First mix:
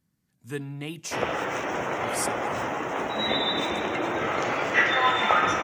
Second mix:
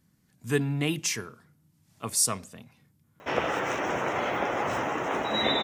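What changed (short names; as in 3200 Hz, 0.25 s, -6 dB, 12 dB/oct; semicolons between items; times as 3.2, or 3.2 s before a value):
speech +7.5 dB; background: entry +2.15 s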